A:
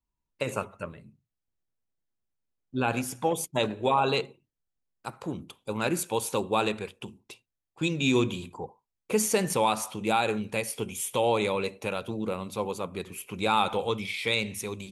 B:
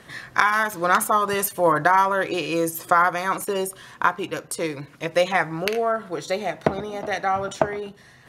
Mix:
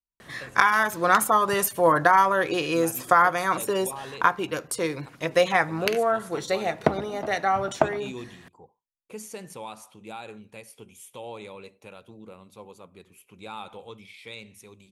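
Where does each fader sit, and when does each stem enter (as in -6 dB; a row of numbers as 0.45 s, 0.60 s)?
-14.0 dB, -0.5 dB; 0.00 s, 0.20 s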